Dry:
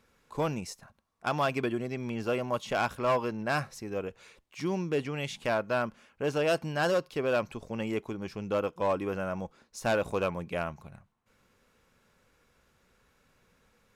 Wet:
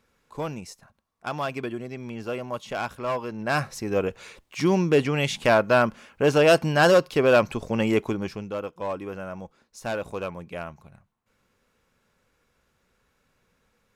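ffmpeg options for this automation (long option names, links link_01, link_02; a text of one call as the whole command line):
ffmpeg -i in.wav -af "volume=10dB,afade=type=in:start_time=3.27:duration=0.7:silence=0.281838,afade=type=out:start_time=8.09:duration=0.42:silence=0.251189" out.wav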